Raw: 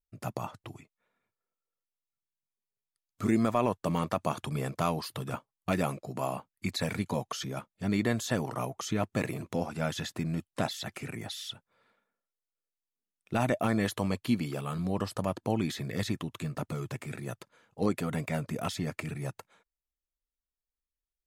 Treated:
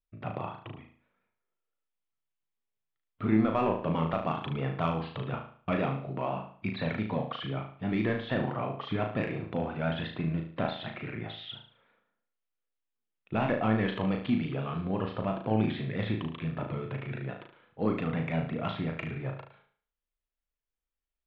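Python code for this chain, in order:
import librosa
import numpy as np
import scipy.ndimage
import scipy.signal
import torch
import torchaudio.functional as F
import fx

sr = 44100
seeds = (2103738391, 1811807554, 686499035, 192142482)

p1 = scipy.signal.sosfilt(scipy.signal.butter(8, 3500.0, 'lowpass', fs=sr, output='sos'), x)
p2 = 10.0 ** (-23.5 / 20.0) * np.tanh(p1 / 10.0 ** (-23.5 / 20.0))
p3 = p1 + F.gain(torch.from_numpy(p2), -3.5).numpy()
p4 = fx.vibrato(p3, sr, rate_hz=5.9, depth_cents=66.0)
p5 = fx.room_flutter(p4, sr, wall_m=6.3, rt60_s=0.48)
y = F.gain(torch.from_numpy(p5), -4.5).numpy()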